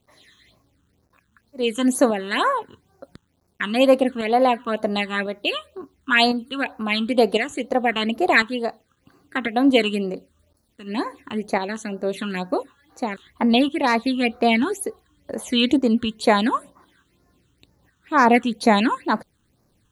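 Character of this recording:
tremolo saw up 0.95 Hz, depth 50%
a quantiser's noise floor 12 bits, dither none
phaser sweep stages 8, 2.1 Hz, lowest notch 630–3,200 Hz

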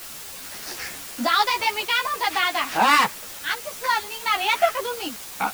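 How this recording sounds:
a quantiser's noise floor 6 bits, dither triangular
a shimmering, thickened sound

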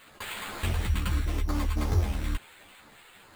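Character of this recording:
phaser sweep stages 8, 0.73 Hz, lowest notch 650–4,500 Hz
aliases and images of a low sample rate 5,700 Hz, jitter 0%
a shimmering, thickened sound

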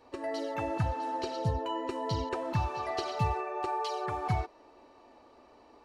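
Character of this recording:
background noise floor −59 dBFS
spectral slope −5.5 dB per octave

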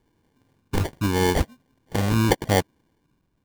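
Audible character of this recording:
phaser sweep stages 6, 0.83 Hz, lowest notch 490–2,500 Hz
aliases and images of a low sample rate 1,300 Hz, jitter 0%

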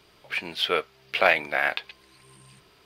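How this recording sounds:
background noise floor −59 dBFS
spectral slope +1.0 dB per octave

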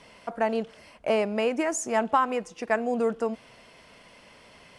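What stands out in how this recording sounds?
background noise floor −54 dBFS
spectral slope −3.5 dB per octave

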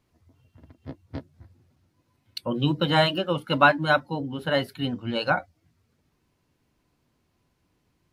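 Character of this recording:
background noise floor −72 dBFS
spectral slope −3.5 dB per octave

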